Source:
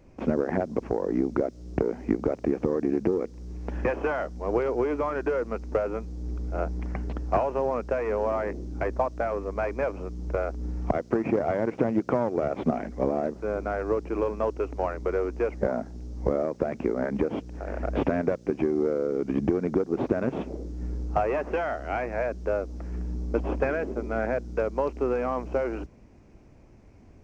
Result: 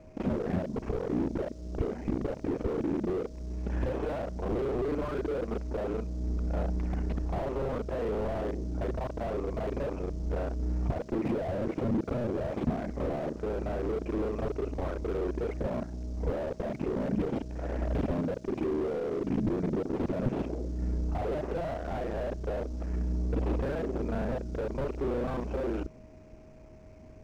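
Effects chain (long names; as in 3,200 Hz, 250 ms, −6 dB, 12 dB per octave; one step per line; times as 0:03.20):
reversed piece by piece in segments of 33 ms
steady tone 630 Hz −57 dBFS
slew-rate limiting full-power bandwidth 13 Hz
level +1.5 dB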